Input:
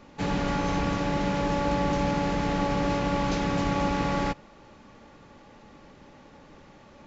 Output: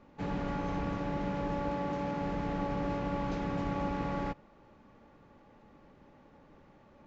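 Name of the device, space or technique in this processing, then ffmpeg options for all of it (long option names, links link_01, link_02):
through cloth: -filter_complex "[0:a]asettb=1/sr,asplit=3[link_01][link_02][link_03];[link_01]atrim=end=1.704[link_04];[link_02]atrim=start=1.7:end=2.21,asetpts=PTS-STARTPTS,afade=type=in:duration=0.004:curve=qsin,afade=type=out:start_time=0.506:duration=0.004:curve=qsin,highpass=frequency=150:poles=1[link_05];[link_03]atrim=start=2.206[link_06];[link_04][link_05]acrossfade=duration=0.004:curve1=hsin:curve2=qsin[link_07];[link_07][link_06]acrossfade=duration=0.004:curve1=qsin:curve2=hsin,highshelf=frequency=3600:gain=-17.5,highshelf=frequency=6300:gain=4.5,volume=-7dB"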